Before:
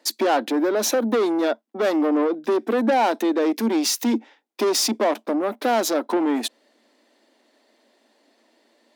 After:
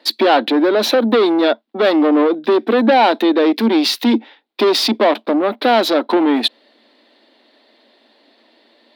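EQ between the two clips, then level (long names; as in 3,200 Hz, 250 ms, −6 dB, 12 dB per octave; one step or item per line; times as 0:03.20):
high shelf with overshoot 5,100 Hz −9 dB, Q 3
+7.0 dB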